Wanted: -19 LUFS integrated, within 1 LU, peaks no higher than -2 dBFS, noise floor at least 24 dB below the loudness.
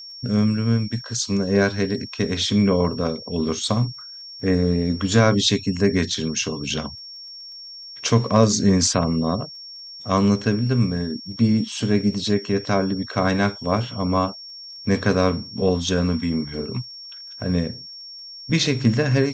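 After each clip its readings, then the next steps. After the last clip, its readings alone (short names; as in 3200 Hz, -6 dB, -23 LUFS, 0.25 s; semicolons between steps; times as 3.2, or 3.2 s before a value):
ticks 26/s; steady tone 5500 Hz; tone level -36 dBFS; loudness -21.5 LUFS; peak -3.0 dBFS; loudness target -19.0 LUFS
-> de-click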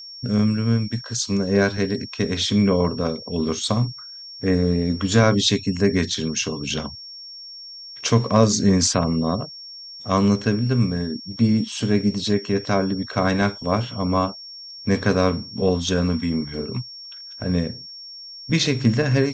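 ticks 0/s; steady tone 5500 Hz; tone level -36 dBFS
-> notch 5500 Hz, Q 30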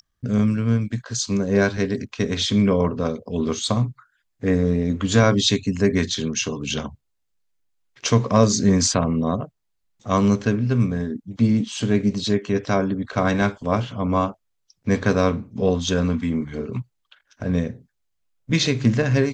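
steady tone none; loudness -21.5 LUFS; peak -3.0 dBFS; loudness target -19.0 LUFS
-> gain +2.5 dB; limiter -2 dBFS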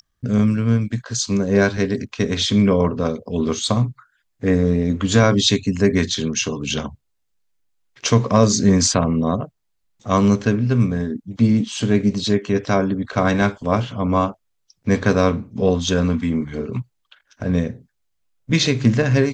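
loudness -19.5 LUFS; peak -2.0 dBFS; noise floor -71 dBFS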